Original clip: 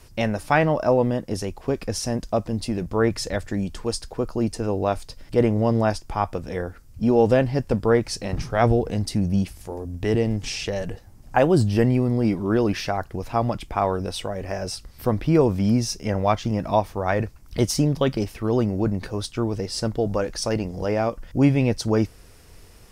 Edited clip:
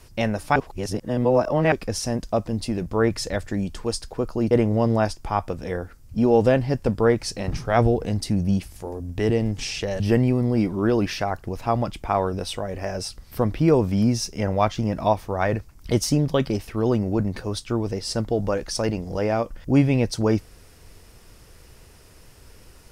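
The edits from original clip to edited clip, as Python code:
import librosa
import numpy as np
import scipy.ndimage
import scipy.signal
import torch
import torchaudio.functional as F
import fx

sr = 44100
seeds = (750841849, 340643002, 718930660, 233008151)

y = fx.edit(x, sr, fx.reverse_span(start_s=0.56, length_s=1.16),
    fx.cut(start_s=4.51, length_s=0.85),
    fx.cut(start_s=10.85, length_s=0.82), tone=tone)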